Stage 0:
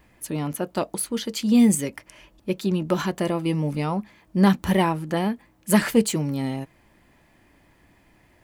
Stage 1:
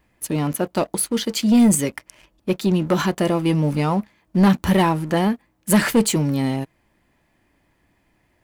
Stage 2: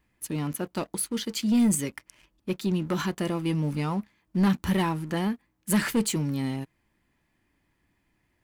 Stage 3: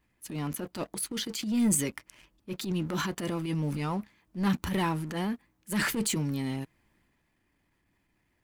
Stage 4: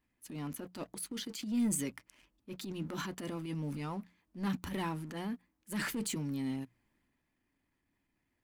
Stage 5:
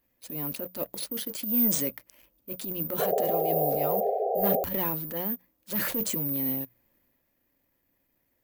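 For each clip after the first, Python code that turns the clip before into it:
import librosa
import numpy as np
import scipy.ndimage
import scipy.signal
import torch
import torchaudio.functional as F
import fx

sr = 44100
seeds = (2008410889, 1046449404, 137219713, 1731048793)

y1 = fx.leveller(x, sr, passes=2)
y1 = y1 * librosa.db_to_amplitude(-2.0)
y2 = fx.peak_eq(y1, sr, hz=620.0, db=-6.5, octaves=0.92)
y2 = y2 * librosa.db_to_amplitude(-7.0)
y3 = fx.hpss(y2, sr, part='harmonic', gain_db=-3)
y3 = fx.transient(y3, sr, attack_db=-11, sustain_db=4)
y4 = fx.peak_eq(y3, sr, hz=260.0, db=6.5, octaves=0.25)
y4 = fx.hum_notches(y4, sr, base_hz=60, count=3)
y4 = y4 * librosa.db_to_amplitude(-8.0)
y5 = (np.kron(y4[::3], np.eye(3)[0]) * 3)[:len(y4)]
y5 = fx.peak_eq(y5, sr, hz=540.0, db=12.5, octaves=0.48)
y5 = fx.spec_paint(y5, sr, seeds[0], shape='noise', start_s=2.99, length_s=1.65, low_hz=380.0, high_hz=800.0, level_db=-29.0)
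y5 = y5 * librosa.db_to_amplitude(2.0)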